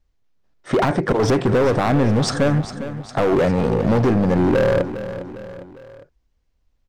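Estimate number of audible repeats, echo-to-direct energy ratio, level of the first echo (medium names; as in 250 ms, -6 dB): 3, -11.5 dB, -12.5 dB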